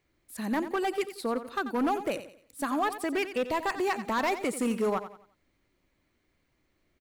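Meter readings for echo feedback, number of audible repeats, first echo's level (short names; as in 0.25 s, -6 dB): 35%, 3, -12.0 dB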